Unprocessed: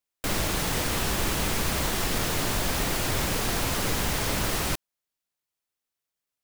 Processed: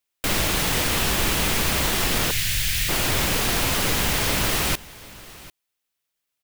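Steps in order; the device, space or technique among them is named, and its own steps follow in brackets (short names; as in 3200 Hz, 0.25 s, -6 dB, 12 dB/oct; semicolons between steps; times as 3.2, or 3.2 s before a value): presence and air boost (bell 2800 Hz +4.5 dB 1.4 oct; high shelf 9900 Hz +4.5 dB); 2.31–2.89 inverse Chebyshev band-stop 280–890 Hz, stop band 50 dB; echo 0.745 s -20 dB; gain +3 dB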